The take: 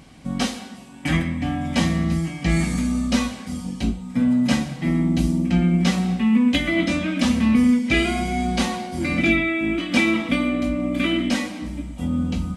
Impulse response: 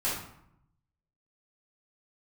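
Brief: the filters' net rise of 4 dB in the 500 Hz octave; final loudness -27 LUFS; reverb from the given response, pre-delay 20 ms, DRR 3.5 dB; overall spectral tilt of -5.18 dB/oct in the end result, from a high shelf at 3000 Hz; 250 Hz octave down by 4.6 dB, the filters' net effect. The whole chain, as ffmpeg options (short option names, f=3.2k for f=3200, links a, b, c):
-filter_complex "[0:a]equalizer=f=250:t=o:g=-8,equalizer=f=500:t=o:g=9,highshelf=f=3k:g=-5,asplit=2[a][b];[1:a]atrim=start_sample=2205,adelay=20[c];[b][c]afir=irnorm=-1:irlink=0,volume=-11.5dB[d];[a][d]amix=inputs=2:normalize=0,volume=-4.5dB"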